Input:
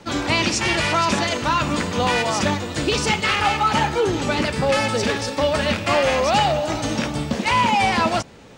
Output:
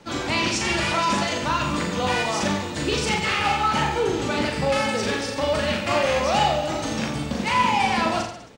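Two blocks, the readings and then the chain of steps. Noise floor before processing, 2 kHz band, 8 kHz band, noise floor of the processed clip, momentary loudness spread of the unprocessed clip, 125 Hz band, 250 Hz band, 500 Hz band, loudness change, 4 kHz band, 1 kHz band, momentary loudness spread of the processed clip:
−31 dBFS, −3.0 dB, −2.5 dB, −32 dBFS, 5 LU, −3.5 dB, −2.5 dB, −3.0 dB, −2.5 dB, −3.0 dB, −2.5 dB, 5 LU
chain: mains-hum notches 50/100 Hz
reverse bouncing-ball delay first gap 40 ms, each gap 1.15×, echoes 5
level −5 dB

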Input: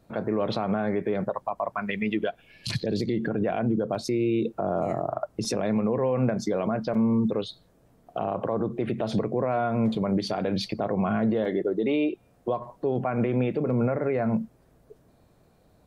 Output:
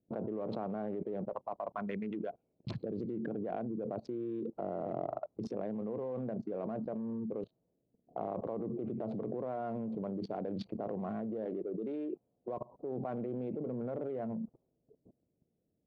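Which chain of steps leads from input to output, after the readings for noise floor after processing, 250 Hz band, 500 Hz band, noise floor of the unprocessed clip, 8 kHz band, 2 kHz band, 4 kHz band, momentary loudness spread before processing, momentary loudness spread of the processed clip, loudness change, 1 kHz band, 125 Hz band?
−81 dBFS, −12.0 dB, −11.0 dB, −61 dBFS, below −30 dB, −19.0 dB, below −20 dB, 6 LU, 4 LU, −12.0 dB, −12.0 dB, −14.5 dB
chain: adaptive Wiener filter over 25 samples
resonant band-pass 410 Hz, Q 0.61
output level in coarse steps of 21 dB
low-pass that shuts in the quiet parts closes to 390 Hz, open at −39 dBFS
level +4.5 dB

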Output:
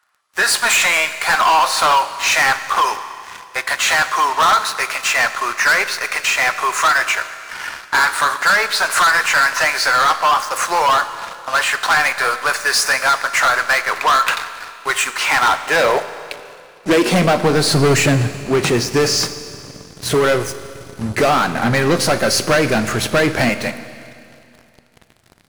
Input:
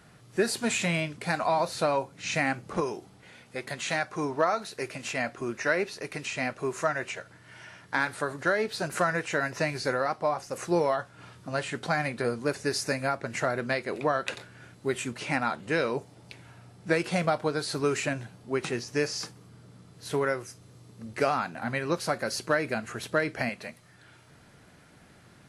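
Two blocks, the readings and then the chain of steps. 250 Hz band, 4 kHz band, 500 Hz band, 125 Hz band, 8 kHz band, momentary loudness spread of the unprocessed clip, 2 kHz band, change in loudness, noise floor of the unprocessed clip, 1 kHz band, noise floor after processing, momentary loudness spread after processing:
+10.0 dB, +18.0 dB, +9.0 dB, +12.5 dB, +17.5 dB, 13 LU, +16.0 dB, +14.0 dB, −56 dBFS, +16.0 dB, −48 dBFS, 13 LU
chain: high-pass filter sweep 1,100 Hz → 61 Hz, 0:15.33–0:18.81
leveller curve on the samples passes 5
four-comb reverb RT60 2.5 s, combs from 29 ms, DRR 11.5 dB

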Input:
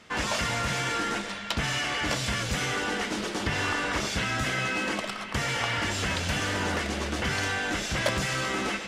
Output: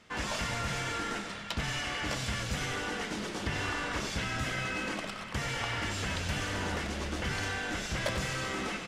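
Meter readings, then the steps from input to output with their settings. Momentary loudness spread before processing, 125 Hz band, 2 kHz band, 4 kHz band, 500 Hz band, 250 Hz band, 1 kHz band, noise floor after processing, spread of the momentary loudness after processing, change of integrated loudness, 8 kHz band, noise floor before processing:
3 LU, −3.5 dB, −6.0 dB, −6.0 dB, −5.5 dB, −5.0 dB, −6.0 dB, −41 dBFS, 3 LU, −5.5 dB, −6.0 dB, −36 dBFS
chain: low-shelf EQ 120 Hz +4.5 dB
on a send: echo with shifted repeats 94 ms, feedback 59%, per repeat −36 Hz, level −10.5 dB
on the sum: level −6.5 dB

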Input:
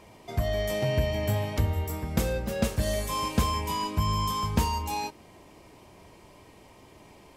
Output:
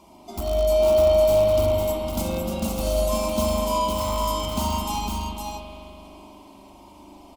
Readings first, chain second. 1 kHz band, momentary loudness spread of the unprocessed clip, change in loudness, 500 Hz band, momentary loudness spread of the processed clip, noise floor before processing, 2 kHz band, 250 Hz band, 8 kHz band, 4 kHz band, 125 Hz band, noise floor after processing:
+3.5 dB, 5 LU, +6.0 dB, +12.0 dB, 15 LU, −54 dBFS, −2.5 dB, +3.5 dB, +5.0 dB, +3.5 dB, −1.5 dB, −48 dBFS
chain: spectral magnitudes quantised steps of 15 dB
low-shelf EQ 63 Hz −5 dB
in parallel at −5.5 dB: wrap-around overflow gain 22 dB
on the sum: phaser with its sweep stopped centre 470 Hz, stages 6
on a send: single-tap delay 506 ms −4.5 dB
on the sum: spring reverb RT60 3 s, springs 40 ms, chirp 45 ms, DRR −2 dB

